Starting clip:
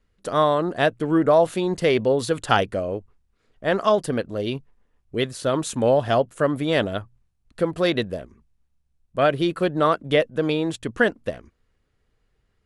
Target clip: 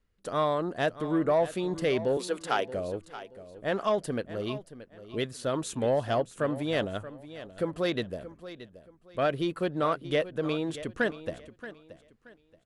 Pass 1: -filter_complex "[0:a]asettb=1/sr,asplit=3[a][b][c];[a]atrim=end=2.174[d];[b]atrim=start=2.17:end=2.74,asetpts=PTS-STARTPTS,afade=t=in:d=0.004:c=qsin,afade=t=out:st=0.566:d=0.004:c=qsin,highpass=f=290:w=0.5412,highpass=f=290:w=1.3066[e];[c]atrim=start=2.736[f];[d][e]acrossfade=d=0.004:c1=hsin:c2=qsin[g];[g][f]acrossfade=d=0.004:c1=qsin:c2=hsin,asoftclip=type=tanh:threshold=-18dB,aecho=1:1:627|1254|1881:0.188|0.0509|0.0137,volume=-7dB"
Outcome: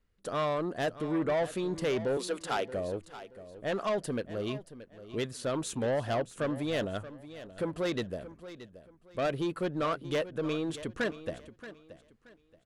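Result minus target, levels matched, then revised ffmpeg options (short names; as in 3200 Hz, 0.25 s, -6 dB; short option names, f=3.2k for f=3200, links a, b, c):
soft clip: distortion +11 dB
-filter_complex "[0:a]asettb=1/sr,asplit=3[a][b][c];[a]atrim=end=2.174[d];[b]atrim=start=2.17:end=2.74,asetpts=PTS-STARTPTS,afade=t=in:d=0.004:c=qsin,afade=t=out:st=0.566:d=0.004:c=qsin,highpass=f=290:w=0.5412,highpass=f=290:w=1.3066[e];[c]atrim=start=2.736[f];[d][e]acrossfade=d=0.004:c1=hsin:c2=qsin[g];[g][f]acrossfade=d=0.004:c1=qsin:c2=hsin,asoftclip=type=tanh:threshold=-8.5dB,aecho=1:1:627|1254|1881:0.188|0.0509|0.0137,volume=-7dB"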